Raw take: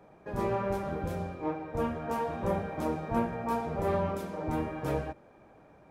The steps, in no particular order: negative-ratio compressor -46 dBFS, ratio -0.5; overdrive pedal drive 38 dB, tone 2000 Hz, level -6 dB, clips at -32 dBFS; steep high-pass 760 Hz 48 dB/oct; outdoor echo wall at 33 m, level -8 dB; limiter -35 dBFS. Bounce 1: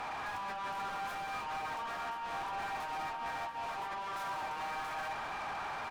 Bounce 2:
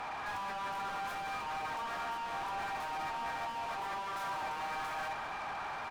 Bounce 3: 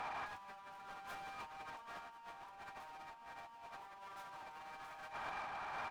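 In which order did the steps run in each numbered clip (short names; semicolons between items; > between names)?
steep high-pass > negative-ratio compressor > overdrive pedal > limiter > outdoor echo; steep high-pass > limiter > negative-ratio compressor > overdrive pedal > outdoor echo; steep high-pass > overdrive pedal > outdoor echo > negative-ratio compressor > limiter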